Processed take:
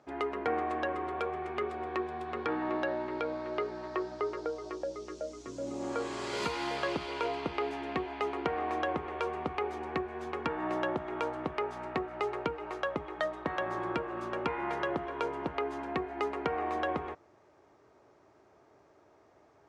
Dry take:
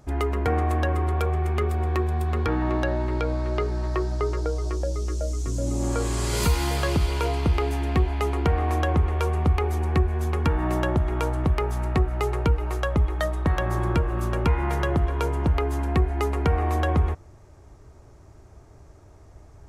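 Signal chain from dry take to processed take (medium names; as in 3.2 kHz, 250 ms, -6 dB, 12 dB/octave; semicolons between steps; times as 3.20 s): band-pass 320–3900 Hz; trim -4.5 dB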